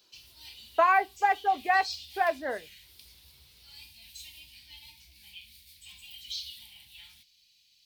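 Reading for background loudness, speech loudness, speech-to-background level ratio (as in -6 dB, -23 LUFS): -44.5 LUFS, -27.0 LUFS, 17.5 dB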